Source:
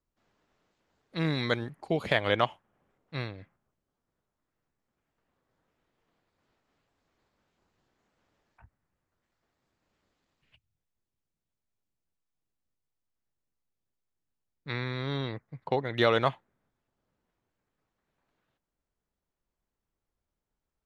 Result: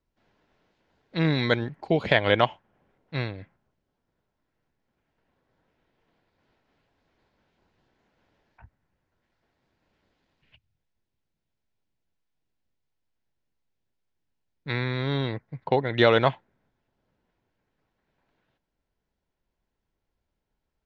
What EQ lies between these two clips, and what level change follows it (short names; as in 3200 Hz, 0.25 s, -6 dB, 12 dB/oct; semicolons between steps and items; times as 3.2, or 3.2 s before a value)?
air absorption 200 m; high shelf 4800 Hz +9.5 dB; notch 1200 Hz, Q 8.2; +6.0 dB